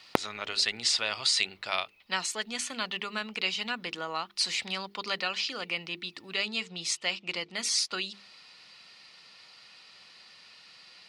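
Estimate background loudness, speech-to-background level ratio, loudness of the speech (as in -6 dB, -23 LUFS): -33.5 LUFS, 3.0 dB, -30.5 LUFS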